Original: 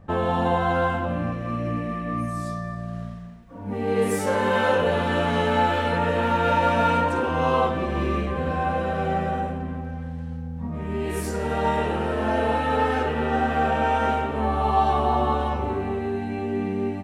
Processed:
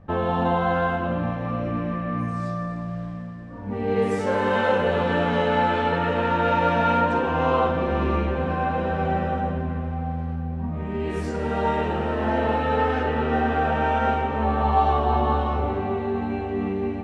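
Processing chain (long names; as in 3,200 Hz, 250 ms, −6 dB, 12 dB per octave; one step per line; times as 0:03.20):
high-frequency loss of the air 110 metres
convolution reverb RT60 5.5 s, pre-delay 108 ms, DRR 8 dB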